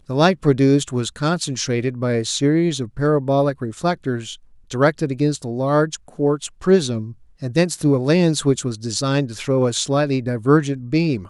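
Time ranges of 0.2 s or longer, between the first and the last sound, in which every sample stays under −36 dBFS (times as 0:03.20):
0:04.36–0:04.70
0:07.13–0:07.42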